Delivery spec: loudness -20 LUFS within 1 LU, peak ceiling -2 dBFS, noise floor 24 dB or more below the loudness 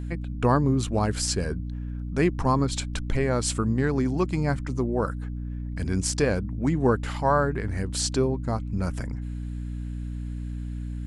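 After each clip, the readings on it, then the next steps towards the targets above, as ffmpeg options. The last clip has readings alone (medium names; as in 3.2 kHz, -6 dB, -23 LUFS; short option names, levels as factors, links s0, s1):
hum 60 Hz; highest harmonic 300 Hz; hum level -30 dBFS; loudness -27.0 LUFS; peak level -9.0 dBFS; loudness target -20.0 LUFS
-> -af "bandreject=f=60:t=h:w=4,bandreject=f=120:t=h:w=4,bandreject=f=180:t=h:w=4,bandreject=f=240:t=h:w=4,bandreject=f=300:t=h:w=4"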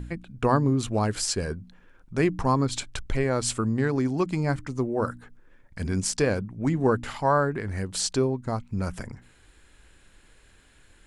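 hum not found; loudness -26.5 LUFS; peak level -9.5 dBFS; loudness target -20.0 LUFS
-> -af "volume=2.11"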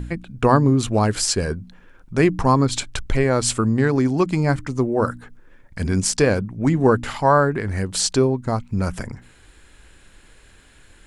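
loudness -20.0 LUFS; peak level -3.0 dBFS; noise floor -51 dBFS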